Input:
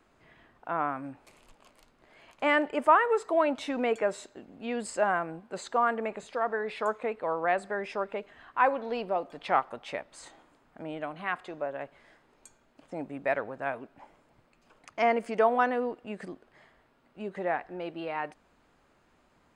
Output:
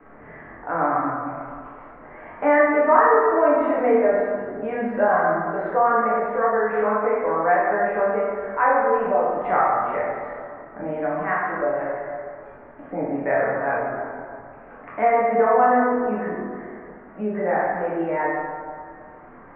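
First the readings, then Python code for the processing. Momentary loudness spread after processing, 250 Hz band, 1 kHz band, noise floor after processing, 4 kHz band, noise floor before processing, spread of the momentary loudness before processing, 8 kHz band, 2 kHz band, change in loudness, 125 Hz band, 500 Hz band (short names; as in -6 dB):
19 LU, +9.5 dB, +9.5 dB, -44 dBFS, under -10 dB, -66 dBFS, 16 LU, under -30 dB, +7.5 dB, +9.0 dB, +10.5 dB, +10.5 dB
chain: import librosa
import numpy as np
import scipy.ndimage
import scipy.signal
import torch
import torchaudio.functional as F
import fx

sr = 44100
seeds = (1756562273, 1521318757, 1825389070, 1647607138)

y = scipy.signal.sosfilt(scipy.signal.cheby1(4, 1.0, 2000.0, 'lowpass', fs=sr, output='sos'), x)
y = fx.low_shelf(y, sr, hz=69.0, db=9.5)
y = fx.doubler(y, sr, ms=24.0, db=-6.0)
y = fx.rev_plate(y, sr, seeds[0], rt60_s=1.6, hf_ratio=0.55, predelay_ms=0, drr_db=-7.0)
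y = fx.band_squash(y, sr, depth_pct=40)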